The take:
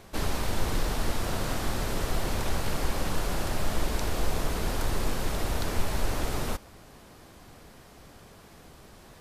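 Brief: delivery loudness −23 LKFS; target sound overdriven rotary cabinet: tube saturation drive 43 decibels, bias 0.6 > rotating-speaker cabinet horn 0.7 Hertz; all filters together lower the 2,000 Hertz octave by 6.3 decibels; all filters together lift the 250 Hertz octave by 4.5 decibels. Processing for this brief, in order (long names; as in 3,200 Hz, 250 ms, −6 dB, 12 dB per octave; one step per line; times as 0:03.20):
parametric band 250 Hz +6 dB
parametric band 2,000 Hz −8.5 dB
tube saturation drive 43 dB, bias 0.6
rotating-speaker cabinet horn 0.7 Hz
level +27.5 dB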